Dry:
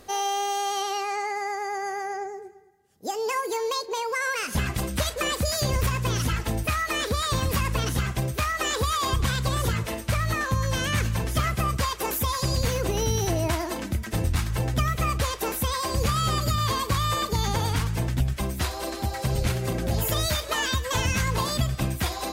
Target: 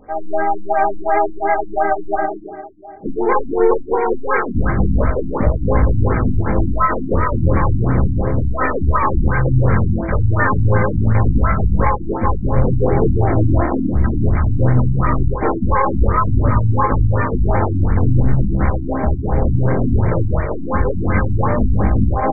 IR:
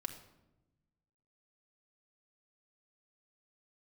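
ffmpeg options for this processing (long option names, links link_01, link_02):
-filter_complex "[0:a]aecho=1:1:672:0.106,asplit=2[link_01][link_02];[link_02]asoftclip=type=tanh:threshold=-18dB,volume=-9dB[link_03];[link_01][link_03]amix=inputs=2:normalize=0,alimiter=limit=-15dB:level=0:latency=1:release=58,bandreject=frequency=50:width_type=h:width=6,bandreject=frequency=100:width_type=h:width=6,bandreject=frequency=150:width_type=h:width=6[link_04];[1:a]atrim=start_sample=2205,atrim=end_sample=6615[link_05];[link_04][link_05]afir=irnorm=-1:irlink=0,aresample=11025,aresample=44100,highshelf=frequency=3800:gain=-11,aeval=exprs='0.266*(cos(1*acos(clip(val(0)/0.266,-1,1)))-cos(1*PI/2))+0.00168*(cos(4*acos(clip(val(0)/0.266,-1,1)))-cos(4*PI/2))+0.0668*(cos(5*acos(clip(val(0)/0.266,-1,1)))-cos(5*PI/2))+0.00473*(cos(6*acos(clip(val(0)/0.266,-1,1)))-cos(6*PI/2))+0.0376*(cos(8*acos(clip(val(0)/0.266,-1,1)))-cos(8*PI/2))':channel_layout=same,dynaudnorm=framelen=100:gausssize=5:maxgain=11dB,asplit=3[link_06][link_07][link_08];[link_07]asetrate=22050,aresample=44100,atempo=2,volume=-16dB[link_09];[link_08]asetrate=35002,aresample=44100,atempo=1.25992,volume=-4dB[link_10];[link_06][link_09][link_10]amix=inputs=3:normalize=0,flanger=delay=19:depth=7.2:speed=0.18,afftfilt=real='re*lt(b*sr/1024,300*pow(2400/300,0.5+0.5*sin(2*PI*2.8*pts/sr)))':imag='im*lt(b*sr/1024,300*pow(2400/300,0.5+0.5*sin(2*PI*2.8*pts/sr)))':win_size=1024:overlap=0.75,volume=-2dB"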